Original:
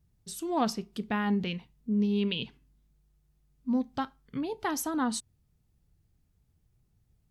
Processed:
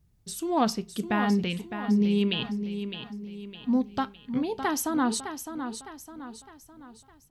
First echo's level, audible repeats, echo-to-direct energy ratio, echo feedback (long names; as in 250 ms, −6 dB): −9.0 dB, 4, −8.0 dB, 44%